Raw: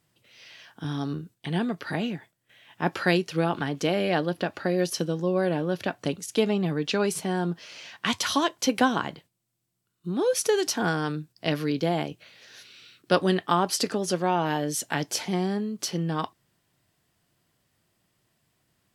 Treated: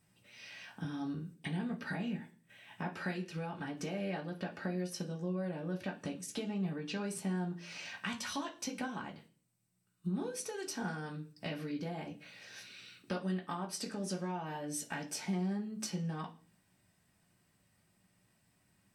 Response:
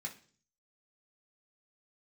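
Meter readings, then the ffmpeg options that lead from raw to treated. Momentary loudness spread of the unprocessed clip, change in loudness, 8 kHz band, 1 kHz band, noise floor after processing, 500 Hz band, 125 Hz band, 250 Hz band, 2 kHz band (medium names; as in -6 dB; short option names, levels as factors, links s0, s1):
9 LU, -12.5 dB, -11.0 dB, -15.0 dB, -74 dBFS, -16.0 dB, -9.5 dB, -10.0 dB, -12.0 dB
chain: -filter_complex "[0:a]acompressor=threshold=0.0158:ratio=5[s0];[1:a]atrim=start_sample=2205,asetrate=48510,aresample=44100[s1];[s0][s1]afir=irnorm=-1:irlink=0,volume=1.12"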